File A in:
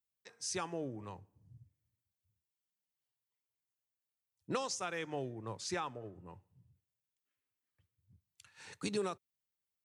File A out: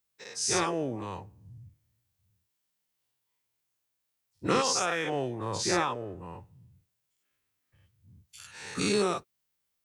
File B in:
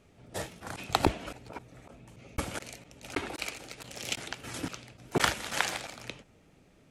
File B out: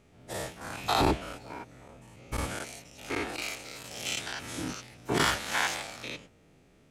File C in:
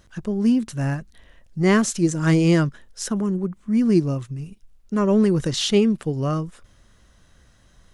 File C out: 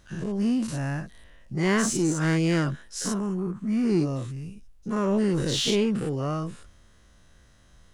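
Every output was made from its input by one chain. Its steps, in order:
every event in the spectrogram widened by 120 ms; in parallel at -5 dB: saturation -19.5 dBFS; on the sum: peak normalisation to -12 dBFS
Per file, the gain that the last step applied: +1.5 dB, -8.5 dB, -10.0 dB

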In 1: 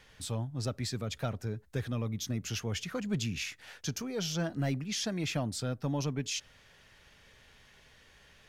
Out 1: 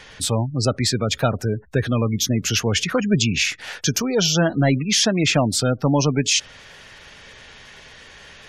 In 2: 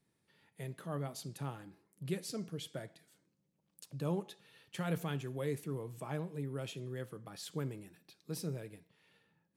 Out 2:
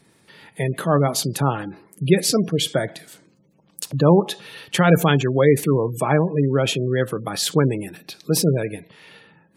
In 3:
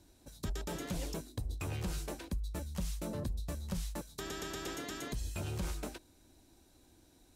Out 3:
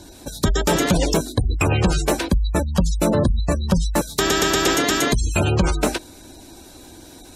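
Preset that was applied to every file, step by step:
spectral gate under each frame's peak -30 dB strong; bass shelf 180 Hz -6.5 dB; normalise loudness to -20 LUFS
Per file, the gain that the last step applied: +17.0 dB, +23.5 dB, +23.5 dB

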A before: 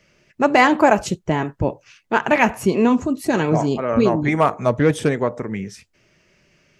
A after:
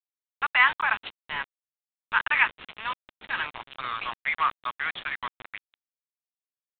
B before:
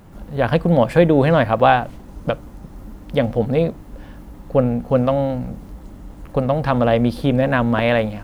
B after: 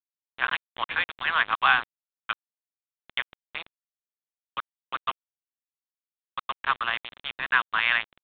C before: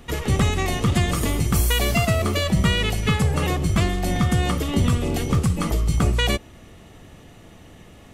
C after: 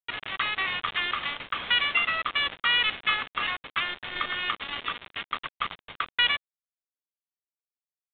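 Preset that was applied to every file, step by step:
steep high-pass 1.1 kHz 36 dB/octave; bit crusher 5-bit; µ-law 64 kbps 8 kHz; normalise loudness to -27 LUFS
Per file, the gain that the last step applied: -1.0 dB, +1.5 dB, +2.5 dB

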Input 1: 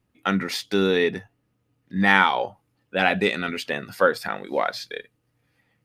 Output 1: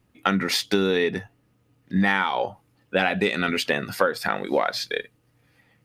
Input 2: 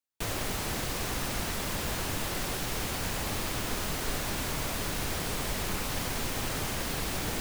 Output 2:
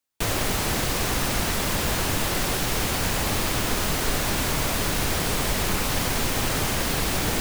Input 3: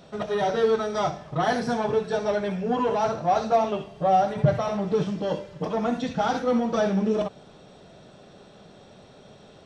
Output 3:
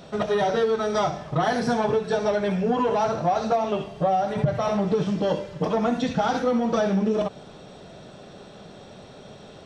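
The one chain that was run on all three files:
compression 8:1, threshold -24 dBFS; normalise loudness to -24 LUFS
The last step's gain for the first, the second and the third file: +6.5 dB, +8.0 dB, +5.5 dB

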